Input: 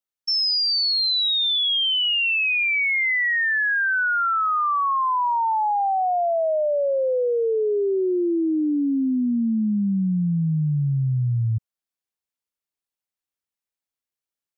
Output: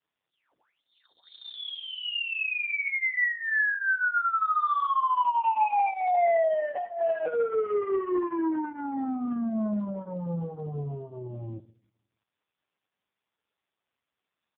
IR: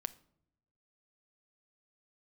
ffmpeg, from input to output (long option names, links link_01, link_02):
-filter_complex "[0:a]asplit=3[link_01][link_02][link_03];[link_01]afade=type=out:start_time=0.82:duration=0.02[link_04];[link_02]aemphasis=mode=production:type=50fm,afade=type=in:start_time=0.82:duration=0.02,afade=type=out:start_time=1.36:duration=0.02[link_05];[link_03]afade=type=in:start_time=1.36:duration=0.02[link_06];[link_04][link_05][link_06]amix=inputs=3:normalize=0,bandreject=frequency=550:width=12,asplit=3[link_07][link_08][link_09];[link_07]afade=type=out:start_time=4.97:duration=0.02[link_10];[link_08]acontrast=68,afade=type=in:start_time=4.97:duration=0.02,afade=type=out:start_time=5.88:duration=0.02[link_11];[link_09]afade=type=in:start_time=5.88:duration=0.02[link_12];[link_10][link_11][link_12]amix=inputs=3:normalize=0,asoftclip=type=tanh:threshold=-26.5dB,bandpass=frequency=950:width_type=q:width=0.53:csg=0,asettb=1/sr,asplit=3[link_13][link_14][link_15];[link_13]atrim=end=6.754[link_16];[link_14]atrim=start=6.75:end=7.26,asetpts=PTS-STARTPTS,afade=type=in:duration=0.004:curve=qsin,afade=type=out:start_time=0.506:duration=0.004:curve=qsin,afreqshift=140[link_17];[link_15]atrim=start=7.256[link_18];[link_16][link_17]acrossfade=duration=0.004:curve1=hsin:curve2=qsin[link_19];[link_19][link_18]acrossfade=duration=0.004:curve1=qsin:curve2=hsin,flanger=delay=18.5:depth=5.6:speed=0.35,aecho=1:1:77|154|231|308:0.15|0.0658|0.029|0.0127,asplit=2[link_20][link_21];[1:a]atrim=start_sample=2205,asetrate=48510,aresample=44100[link_22];[link_21][link_22]afir=irnorm=-1:irlink=0,volume=-8dB[link_23];[link_20][link_23]amix=inputs=2:normalize=0,volume=5dB" -ar 8000 -c:a libopencore_amrnb -b:a 4750